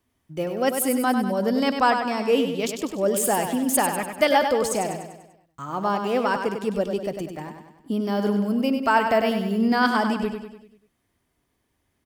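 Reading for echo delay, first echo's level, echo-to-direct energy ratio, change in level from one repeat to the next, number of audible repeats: 98 ms, -7.0 dB, -5.5 dB, -6.0 dB, 5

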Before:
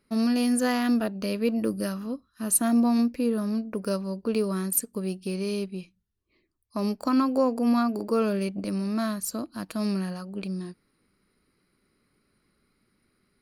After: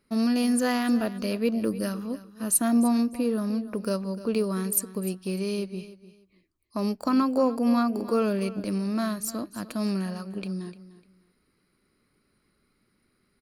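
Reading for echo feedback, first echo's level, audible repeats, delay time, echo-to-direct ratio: 22%, -16.0 dB, 2, 0.3 s, -16.0 dB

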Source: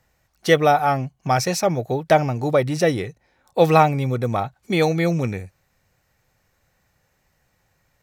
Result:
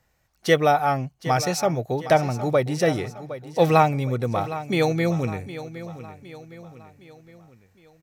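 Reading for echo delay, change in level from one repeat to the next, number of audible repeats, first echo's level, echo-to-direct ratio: 0.762 s, -6.5 dB, 4, -14.0 dB, -13.0 dB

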